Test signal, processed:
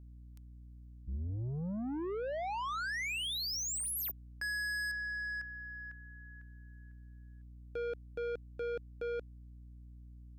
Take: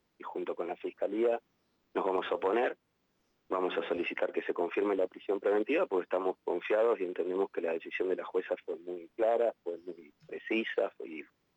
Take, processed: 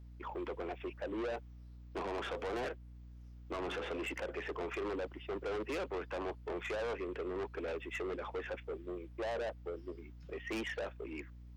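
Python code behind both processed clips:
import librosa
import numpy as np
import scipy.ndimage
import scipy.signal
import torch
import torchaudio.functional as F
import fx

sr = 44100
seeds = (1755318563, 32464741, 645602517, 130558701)

y = 10.0 ** (-35.5 / 20.0) * np.tanh(x / 10.0 ** (-35.5 / 20.0))
y = fx.dmg_buzz(y, sr, base_hz=60.0, harmonics=5, level_db=-52.0, tilt_db=-9, odd_only=False)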